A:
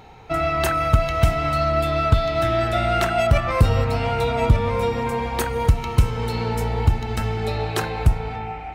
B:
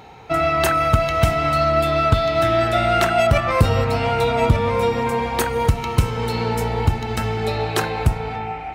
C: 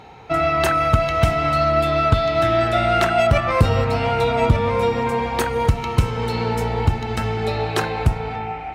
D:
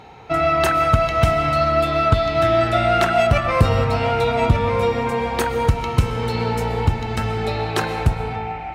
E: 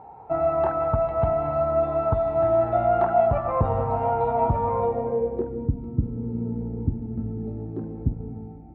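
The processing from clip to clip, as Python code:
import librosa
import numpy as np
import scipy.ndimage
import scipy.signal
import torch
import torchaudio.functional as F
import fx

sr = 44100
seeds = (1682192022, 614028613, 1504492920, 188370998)

y1 = fx.highpass(x, sr, hz=110.0, slope=6)
y1 = y1 * librosa.db_to_amplitude(3.5)
y2 = fx.high_shelf(y1, sr, hz=9000.0, db=-9.0)
y3 = fx.rev_freeverb(y2, sr, rt60_s=1.1, hf_ratio=0.85, predelay_ms=85, drr_db=12.0)
y4 = fx.filter_sweep_lowpass(y3, sr, from_hz=860.0, to_hz=270.0, start_s=4.78, end_s=5.7, q=3.2)
y4 = y4 * librosa.db_to_amplitude(-8.5)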